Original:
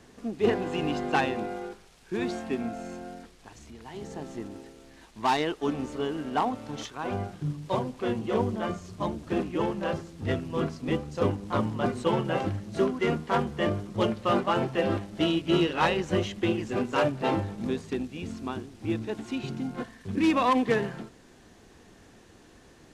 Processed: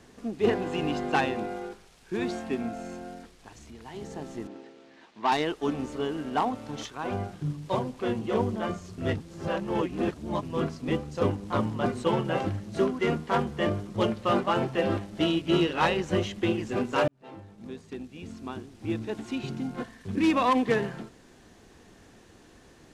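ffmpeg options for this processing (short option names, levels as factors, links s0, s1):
-filter_complex "[0:a]asettb=1/sr,asplit=3[s0][s1][s2];[s0]atrim=end=4.474[s3];[s1]atrim=start=4.47:end=5.32,asetpts=PTS-STARTPTS,afade=t=in:d=0.004:c=qsin,afade=t=out:st=0.846:d=0.004:c=qsin,highpass=230,lowpass=4100[s4];[s2]atrim=start=5.316[s5];[s3][s4]acrossfade=d=0.004:c1=hsin:c2=qsin[s6];[s6][s5]acrossfade=d=0.004:c1=qsin:c2=hsin,asplit=4[s7][s8][s9][s10];[s7]atrim=end=8.982[s11];[s8]atrim=start=8.978:end=10.432,asetpts=PTS-STARTPTS,areverse[s12];[s9]atrim=start=10.428:end=17.08,asetpts=PTS-STARTPTS,afade=t=out:st=6.648:d=0.004:c=hsin[s13];[s10]atrim=start=17.08,asetpts=PTS-STARTPTS,afade=t=in:d=2.09[s14];[s11][s12]acrossfade=d=0.004:c1=hsin:c2=hsin[s15];[s13][s14]concat=n=2:v=0:a=1[s16];[s15][s16]acrossfade=d=0.004:c1=hsin:c2=hsin"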